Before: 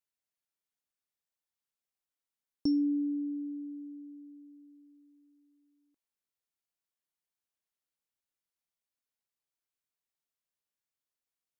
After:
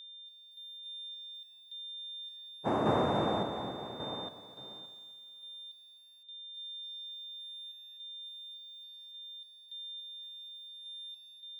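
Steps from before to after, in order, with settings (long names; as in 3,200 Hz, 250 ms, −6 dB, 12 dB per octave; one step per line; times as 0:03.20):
noise gate −59 dBFS, range −17 dB
in parallel at −2 dB: downward compressor, threshold −42 dBFS, peak gain reduction 15.5 dB
on the sum: spectral peaks only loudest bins 1
cochlear-implant simulation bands 2
steady tone 3,600 Hz −48 dBFS
sample-and-hold tremolo, depth 80%
on a send: feedback echo with a high-pass in the loop 704 ms, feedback 37%, high-pass 1,200 Hz, level −24 dB
on the sum: feedback echo at a low word length 257 ms, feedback 35%, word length 11 bits, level −14 dB
level +7.5 dB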